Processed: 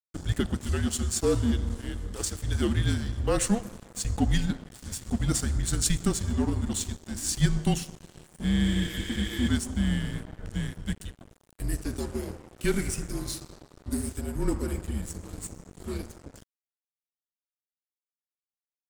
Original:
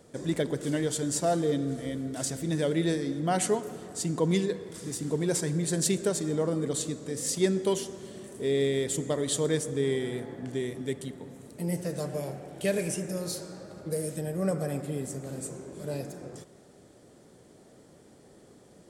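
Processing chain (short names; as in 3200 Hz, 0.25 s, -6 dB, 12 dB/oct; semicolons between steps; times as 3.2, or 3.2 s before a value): frequency shift -220 Hz; spectral repair 8.68–9.46, 280–11000 Hz before; crossover distortion -42.5 dBFS; gain +3 dB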